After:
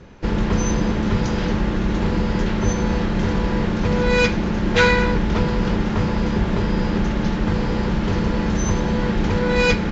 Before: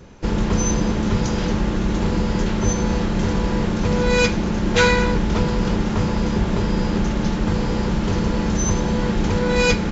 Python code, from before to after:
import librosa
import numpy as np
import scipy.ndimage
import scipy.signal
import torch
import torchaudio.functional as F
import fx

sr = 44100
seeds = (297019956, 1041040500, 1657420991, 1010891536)

y = scipy.signal.sosfilt(scipy.signal.butter(2, 5000.0, 'lowpass', fs=sr, output='sos'), x)
y = fx.peak_eq(y, sr, hz=1800.0, db=2.5, octaves=0.66)